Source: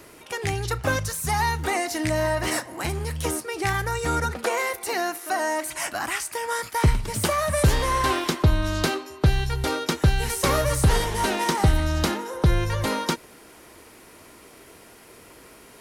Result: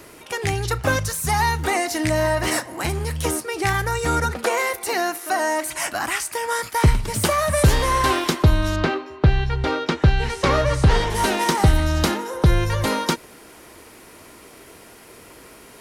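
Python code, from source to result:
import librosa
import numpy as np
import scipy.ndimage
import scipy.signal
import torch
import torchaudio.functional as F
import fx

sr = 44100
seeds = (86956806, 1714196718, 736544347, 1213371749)

y = fx.lowpass(x, sr, hz=fx.line((8.75, 2600.0), (11.09, 5000.0)), slope=12, at=(8.75, 11.09), fade=0.02)
y = F.gain(torch.from_numpy(y), 3.5).numpy()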